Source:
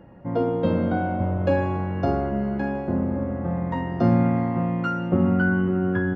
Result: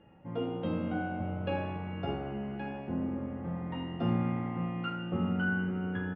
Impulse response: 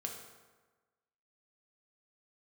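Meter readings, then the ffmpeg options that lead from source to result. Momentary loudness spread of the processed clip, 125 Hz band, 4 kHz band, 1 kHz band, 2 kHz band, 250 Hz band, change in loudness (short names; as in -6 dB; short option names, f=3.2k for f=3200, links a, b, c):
7 LU, -10.5 dB, n/a, -11.0 dB, -7.5 dB, -10.5 dB, -10.5 dB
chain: -filter_complex "[0:a]lowpass=f=3k:t=q:w=3.2,asplit=4[a][b][c][d];[b]adelay=84,afreqshift=64,volume=-17.5dB[e];[c]adelay=168,afreqshift=128,volume=-26.4dB[f];[d]adelay=252,afreqshift=192,volume=-35.2dB[g];[a][e][f][g]amix=inputs=4:normalize=0[h];[1:a]atrim=start_sample=2205,afade=t=out:st=0.2:d=0.01,atrim=end_sample=9261,asetrate=79380,aresample=44100[i];[h][i]afir=irnorm=-1:irlink=0,volume=-4.5dB"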